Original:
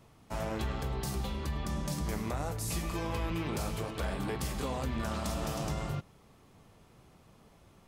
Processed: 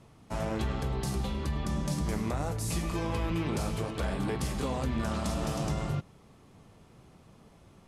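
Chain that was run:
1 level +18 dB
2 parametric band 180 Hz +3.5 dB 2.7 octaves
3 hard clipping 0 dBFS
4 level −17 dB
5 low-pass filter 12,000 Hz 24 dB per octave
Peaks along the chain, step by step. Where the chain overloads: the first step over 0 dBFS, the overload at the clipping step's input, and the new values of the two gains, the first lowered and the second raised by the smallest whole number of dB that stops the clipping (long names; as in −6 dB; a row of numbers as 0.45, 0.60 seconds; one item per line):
−6.5, −4.0, −4.0, −21.0, −21.0 dBFS
no step passes full scale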